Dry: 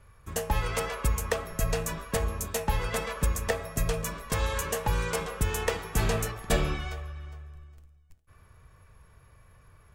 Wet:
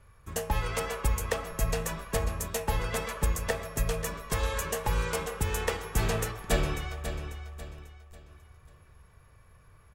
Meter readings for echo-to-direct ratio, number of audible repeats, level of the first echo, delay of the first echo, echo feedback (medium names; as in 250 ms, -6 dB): -9.5 dB, 3, -10.0 dB, 543 ms, 36%